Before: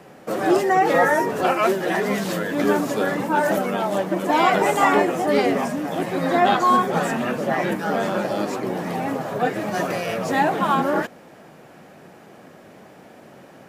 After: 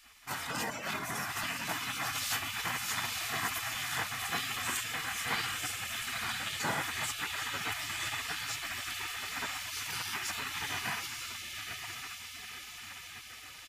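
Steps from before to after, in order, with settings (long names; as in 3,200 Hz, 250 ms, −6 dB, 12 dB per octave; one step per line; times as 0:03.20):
brickwall limiter −15.5 dBFS, peak gain reduction 10.5 dB
comb filter 2 ms, depth 49%
0:09.66–0:10.26: high-pass filter 790 Hz → 210 Hz 24 dB per octave
feedback delay with all-pass diffusion 948 ms, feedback 64%, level −3.5 dB
gate on every frequency bin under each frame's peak −20 dB weak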